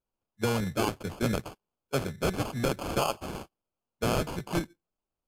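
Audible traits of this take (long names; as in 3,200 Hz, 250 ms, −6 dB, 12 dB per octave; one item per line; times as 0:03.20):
aliases and images of a low sample rate 1,900 Hz, jitter 0%
Ogg Vorbis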